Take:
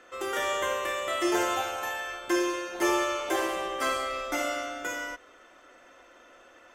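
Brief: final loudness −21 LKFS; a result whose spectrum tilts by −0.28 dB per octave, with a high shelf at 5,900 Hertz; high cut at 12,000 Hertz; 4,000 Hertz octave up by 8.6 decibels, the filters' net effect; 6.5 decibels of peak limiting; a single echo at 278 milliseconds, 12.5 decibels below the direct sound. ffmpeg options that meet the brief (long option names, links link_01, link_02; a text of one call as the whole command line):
ffmpeg -i in.wav -af "lowpass=12000,equalizer=frequency=4000:width_type=o:gain=9,highshelf=frequency=5900:gain=8,alimiter=limit=-18.5dB:level=0:latency=1,aecho=1:1:278:0.237,volume=7dB" out.wav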